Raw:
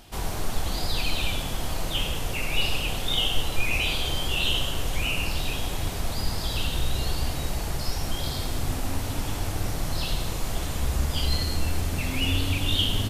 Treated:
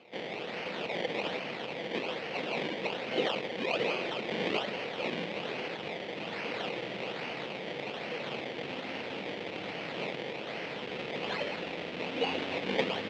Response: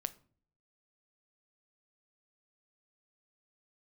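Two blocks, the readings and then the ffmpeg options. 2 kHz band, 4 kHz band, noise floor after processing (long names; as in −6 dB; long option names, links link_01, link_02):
−3.5 dB, −10.5 dB, −41 dBFS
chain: -af "acrusher=samples=23:mix=1:aa=0.000001:lfo=1:lforange=23:lforate=1.2,highpass=frequency=190:width=0.5412,highpass=frequency=190:width=1.3066,equalizer=frequency=270:width_type=q:width=4:gain=-4,equalizer=frequency=490:width_type=q:width=4:gain=7,equalizer=frequency=1100:width_type=q:width=4:gain=-4,lowpass=frequency=3200:width=0.5412,lowpass=frequency=3200:width=1.3066,aexciter=amount=3.8:drive=4.9:freq=2100,volume=-5dB"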